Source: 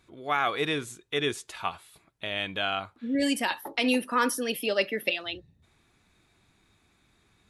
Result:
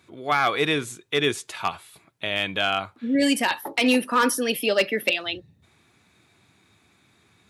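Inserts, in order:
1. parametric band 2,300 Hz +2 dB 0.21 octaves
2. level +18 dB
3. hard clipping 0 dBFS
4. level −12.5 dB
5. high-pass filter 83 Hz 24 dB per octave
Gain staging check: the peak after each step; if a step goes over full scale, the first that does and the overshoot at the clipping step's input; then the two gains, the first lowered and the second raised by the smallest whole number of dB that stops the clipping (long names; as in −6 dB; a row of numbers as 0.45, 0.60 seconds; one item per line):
−12.0, +6.0, 0.0, −12.5, −9.5 dBFS
step 2, 6.0 dB
step 2 +12 dB, step 4 −6.5 dB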